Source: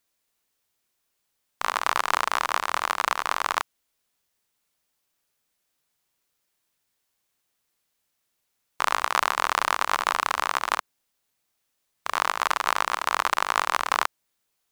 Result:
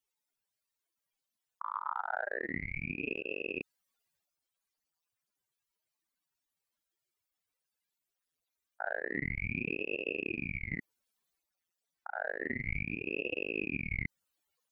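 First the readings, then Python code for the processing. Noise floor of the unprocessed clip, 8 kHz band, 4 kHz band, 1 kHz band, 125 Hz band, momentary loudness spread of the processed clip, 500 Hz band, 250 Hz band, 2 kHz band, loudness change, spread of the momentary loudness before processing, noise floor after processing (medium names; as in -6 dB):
-77 dBFS, under -40 dB, -22.0 dB, -20.0 dB, no reading, 6 LU, -4.0 dB, +6.0 dB, -8.5 dB, -11.5 dB, 5 LU, under -85 dBFS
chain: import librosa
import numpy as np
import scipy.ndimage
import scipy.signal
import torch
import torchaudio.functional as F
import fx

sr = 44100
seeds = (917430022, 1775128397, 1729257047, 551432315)

y = fx.spec_expand(x, sr, power=3.9)
y = fx.transient(y, sr, attack_db=-2, sustain_db=5)
y = fx.ring_lfo(y, sr, carrier_hz=810.0, swing_pct=90, hz=0.3)
y = y * librosa.db_to_amplitude(-8.0)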